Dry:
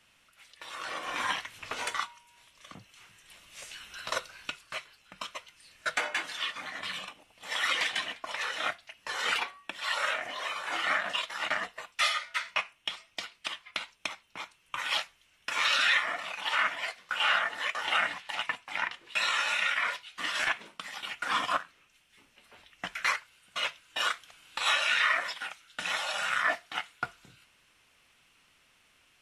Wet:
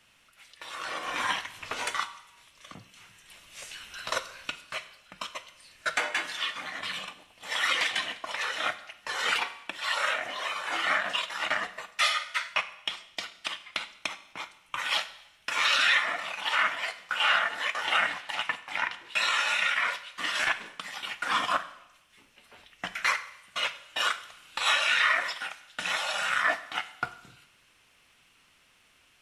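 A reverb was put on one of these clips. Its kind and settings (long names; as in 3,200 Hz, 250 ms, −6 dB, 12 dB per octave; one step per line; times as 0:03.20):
four-comb reverb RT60 0.87 s, combs from 33 ms, DRR 13.5 dB
level +2 dB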